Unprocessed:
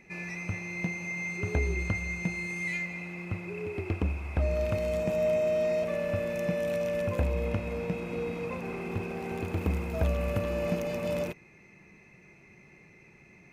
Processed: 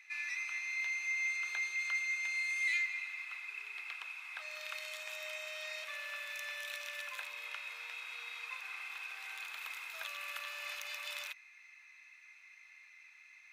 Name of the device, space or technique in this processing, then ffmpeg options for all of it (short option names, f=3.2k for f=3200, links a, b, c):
headphones lying on a table: -af "highpass=f=1.3k:w=0.5412,highpass=f=1.3k:w=1.3066,equalizer=f=3.7k:t=o:w=0.4:g=8.5"